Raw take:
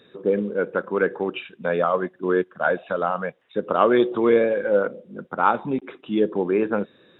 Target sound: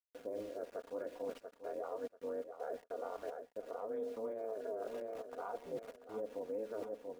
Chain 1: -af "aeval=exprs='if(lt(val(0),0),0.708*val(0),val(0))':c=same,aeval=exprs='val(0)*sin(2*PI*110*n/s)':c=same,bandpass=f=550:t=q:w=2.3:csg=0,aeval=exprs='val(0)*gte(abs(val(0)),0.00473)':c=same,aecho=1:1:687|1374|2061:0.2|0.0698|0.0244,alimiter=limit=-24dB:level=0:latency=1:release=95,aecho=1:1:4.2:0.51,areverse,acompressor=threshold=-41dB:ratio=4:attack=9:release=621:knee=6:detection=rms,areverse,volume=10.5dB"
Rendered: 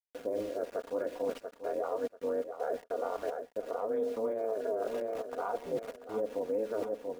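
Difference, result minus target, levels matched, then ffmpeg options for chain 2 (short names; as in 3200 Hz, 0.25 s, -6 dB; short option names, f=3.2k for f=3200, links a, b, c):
compressor: peak gain reduction -8 dB
-af "aeval=exprs='if(lt(val(0),0),0.708*val(0),val(0))':c=same,aeval=exprs='val(0)*sin(2*PI*110*n/s)':c=same,bandpass=f=550:t=q:w=2.3:csg=0,aeval=exprs='val(0)*gte(abs(val(0)),0.00473)':c=same,aecho=1:1:687|1374|2061:0.2|0.0698|0.0244,alimiter=limit=-24dB:level=0:latency=1:release=95,aecho=1:1:4.2:0.51,areverse,acompressor=threshold=-52dB:ratio=4:attack=9:release=621:knee=6:detection=rms,areverse,volume=10.5dB"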